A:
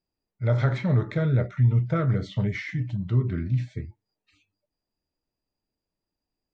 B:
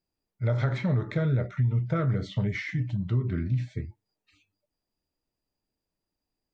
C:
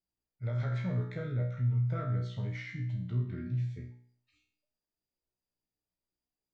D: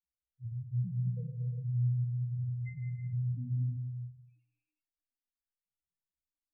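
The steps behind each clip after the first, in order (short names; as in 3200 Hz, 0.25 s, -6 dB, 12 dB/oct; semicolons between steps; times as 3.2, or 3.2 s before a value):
compressor 4:1, threshold -22 dBFS, peak gain reduction 6 dB
resonator 61 Hz, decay 0.55 s, harmonics all, mix 90%
loudest bins only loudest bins 1; non-linear reverb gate 0.43 s flat, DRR 1.5 dB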